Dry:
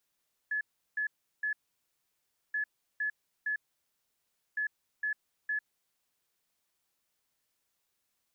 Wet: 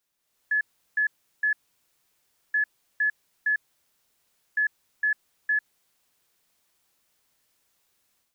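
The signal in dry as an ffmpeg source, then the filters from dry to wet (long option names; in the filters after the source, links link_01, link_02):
-f lavfi -i "aevalsrc='0.0355*sin(2*PI*1710*t)*clip(min(mod(mod(t,2.03),0.46),0.1-mod(mod(t,2.03),0.46))/0.005,0,1)*lt(mod(t,2.03),1.38)':duration=6.09:sample_rate=44100"
-af "dynaudnorm=framelen=210:gausssize=3:maxgain=9dB"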